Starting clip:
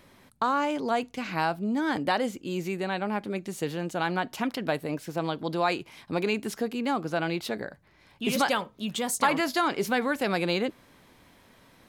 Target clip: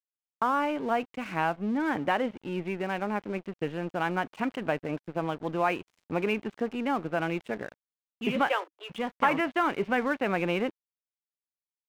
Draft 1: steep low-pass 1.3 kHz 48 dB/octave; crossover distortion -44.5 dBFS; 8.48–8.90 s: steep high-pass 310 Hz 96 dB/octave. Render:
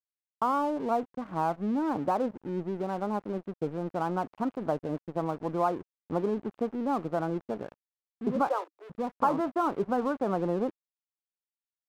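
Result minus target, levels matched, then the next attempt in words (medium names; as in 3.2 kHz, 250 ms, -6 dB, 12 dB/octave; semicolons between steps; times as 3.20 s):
4 kHz band -11.5 dB
steep low-pass 3 kHz 48 dB/octave; crossover distortion -44.5 dBFS; 8.48–8.90 s: steep high-pass 310 Hz 96 dB/octave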